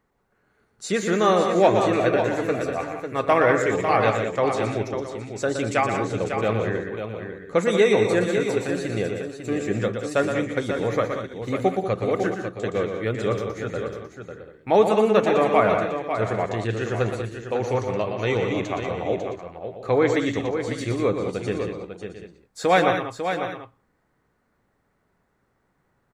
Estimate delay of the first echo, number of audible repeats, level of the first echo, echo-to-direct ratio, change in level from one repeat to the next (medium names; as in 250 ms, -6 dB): 119 ms, 5, -7.0 dB, -2.5 dB, no regular repeats